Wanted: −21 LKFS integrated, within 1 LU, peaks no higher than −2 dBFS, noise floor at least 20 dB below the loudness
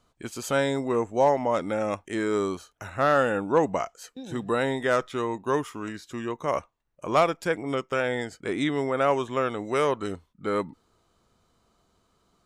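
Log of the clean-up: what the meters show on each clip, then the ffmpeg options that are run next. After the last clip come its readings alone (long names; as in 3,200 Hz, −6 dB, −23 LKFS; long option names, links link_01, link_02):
integrated loudness −27.0 LKFS; sample peak −11.0 dBFS; target loudness −21.0 LKFS
→ -af "volume=6dB"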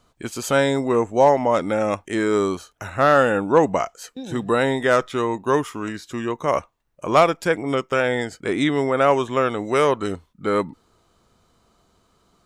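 integrated loudness −21.0 LKFS; sample peak −5.0 dBFS; background noise floor −65 dBFS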